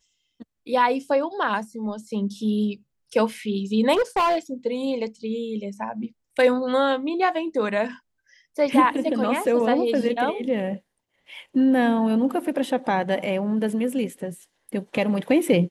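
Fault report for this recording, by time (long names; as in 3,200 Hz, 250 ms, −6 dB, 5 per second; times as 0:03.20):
0:03.93–0:04.38: clipping −17 dBFS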